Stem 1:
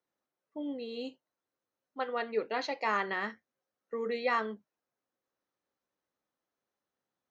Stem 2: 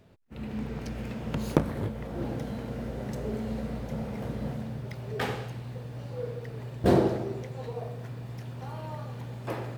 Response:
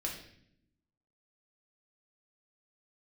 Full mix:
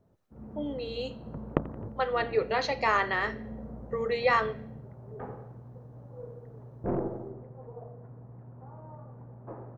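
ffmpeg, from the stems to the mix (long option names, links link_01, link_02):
-filter_complex "[0:a]highpass=frequency=320:width=0.5412,highpass=frequency=320:width=1.3066,dynaudnorm=framelen=120:gausssize=3:maxgain=5dB,volume=-1.5dB,asplit=2[link_01][link_02];[link_02]volume=-11dB[link_03];[1:a]lowpass=frequency=1200:width=0.5412,lowpass=frequency=1200:width=1.3066,aeval=exprs='0.531*(cos(1*acos(clip(val(0)/0.531,-1,1)))-cos(1*PI/2))+0.188*(cos(3*acos(clip(val(0)/0.531,-1,1)))-cos(3*PI/2))+0.0596*(cos(5*acos(clip(val(0)/0.531,-1,1)))-cos(5*PI/2))+0.0168*(cos(6*acos(clip(val(0)/0.531,-1,1)))-cos(6*PI/2))':channel_layout=same,volume=-2dB,asplit=2[link_04][link_05];[link_05]volume=-18dB[link_06];[2:a]atrim=start_sample=2205[link_07];[link_03][link_07]afir=irnorm=-1:irlink=0[link_08];[link_06]aecho=0:1:87|174|261|348|435|522|609|696:1|0.54|0.292|0.157|0.085|0.0459|0.0248|0.0134[link_09];[link_01][link_04][link_08][link_09]amix=inputs=4:normalize=0"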